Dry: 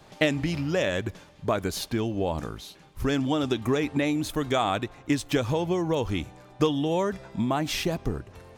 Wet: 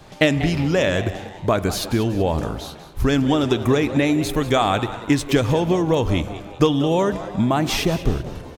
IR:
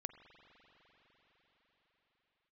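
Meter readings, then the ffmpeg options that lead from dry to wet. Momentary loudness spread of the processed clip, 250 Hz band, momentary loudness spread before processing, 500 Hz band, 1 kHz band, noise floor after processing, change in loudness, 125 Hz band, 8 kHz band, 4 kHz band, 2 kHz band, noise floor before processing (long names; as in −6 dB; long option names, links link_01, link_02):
7 LU, +7.0 dB, 9 LU, +7.0 dB, +6.5 dB, −40 dBFS, +7.0 dB, +8.5 dB, +6.5 dB, +6.5 dB, +6.5 dB, −53 dBFS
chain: -filter_complex "[0:a]asplit=5[link_01][link_02][link_03][link_04][link_05];[link_02]adelay=190,afreqshift=110,volume=-14.5dB[link_06];[link_03]adelay=380,afreqshift=220,volume=-21.2dB[link_07];[link_04]adelay=570,afreqshift=330,volume=-28dB[link_08];[link_05]adelay=760,afreqshift=440,volume=-34.7dB[link_09];[link_01][link_06][link_07][link_08][link_09]amix=inputs=5:normalize=0,asplit=2[link_10][link_11];[1:a]atrim=start_sample=2205,afade=type=out:start_time=0.42:duration=0.01,atrim=end_sample=18963,lowshelf=frequency=120:gain=9[link_12];[link_11][link_12]afir=irnorm=-1:irlink=0,volume=7dB[link_13];[link_10][link_13]amix=inputs=2:normalize=0,volume=-1.5dB"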